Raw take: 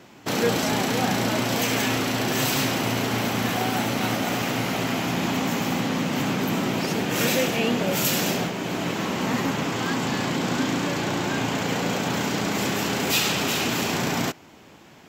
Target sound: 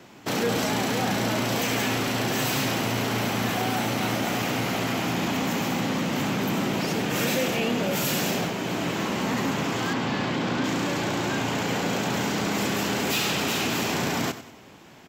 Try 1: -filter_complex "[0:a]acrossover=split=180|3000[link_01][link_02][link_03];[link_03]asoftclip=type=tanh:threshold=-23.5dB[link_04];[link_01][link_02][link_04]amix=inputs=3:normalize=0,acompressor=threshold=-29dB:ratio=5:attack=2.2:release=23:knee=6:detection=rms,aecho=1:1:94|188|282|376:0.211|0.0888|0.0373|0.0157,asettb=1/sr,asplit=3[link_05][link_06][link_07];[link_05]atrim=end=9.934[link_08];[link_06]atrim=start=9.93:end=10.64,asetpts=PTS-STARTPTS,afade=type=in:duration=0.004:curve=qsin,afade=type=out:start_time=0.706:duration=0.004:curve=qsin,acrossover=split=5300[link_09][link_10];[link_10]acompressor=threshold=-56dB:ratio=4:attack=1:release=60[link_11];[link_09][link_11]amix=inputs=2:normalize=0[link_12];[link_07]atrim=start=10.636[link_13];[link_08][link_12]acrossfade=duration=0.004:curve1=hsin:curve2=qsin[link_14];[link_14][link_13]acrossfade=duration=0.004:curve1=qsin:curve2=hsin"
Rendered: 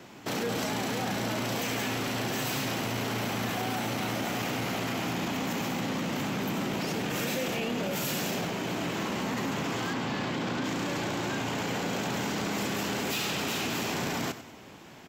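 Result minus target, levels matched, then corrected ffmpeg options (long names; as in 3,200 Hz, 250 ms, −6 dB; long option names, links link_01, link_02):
downward compressor: peak gain reduction +7 dB
-filter_complex "[0:a]acrossover=split=180|3000[link_01][link_02][link_03];[link_03]asoftclip=type=tanh:threshold=-23.5dB[link_04];[link_01][link_02][link_04]amix=inputs=3:normalize=0,acompressor=threshold=-20dB:ratio=5:attack=2.2:release=23:knee=6:detection=rms,aecho=1:1:94|188|282|376:0.211|0.0888|0.0373|0.0157,asettb=1/sr,asplit=3[link_05][link_06][link_07];[link_05]atrim=end=9.934[link_08];[link_06]atrim=start=9.93:end=10.64,asetpts=PTS-STARTPTS,afade=type=in:duration=0.004:curve=qsin,afade=type=out:start_time=0.706:duration=0.004:curve=qsin,acrossover=split=5300[link_09][link_10];[link_10]acompressor=threshold=-56dB:ratio=4:attack=1:release=60[link_11];[link_09][link_11]amix=inputs=2:normalize=0[link_12];[link_07]atrim=start=10.636[link_13];[link_08][link_12]acrossfade=duration=0.004:curve1=hsin:curve2=qsin[link_14];[link_14][link_13]acrossfade=duration=0.004:curve1=qsin:curve2=hsin"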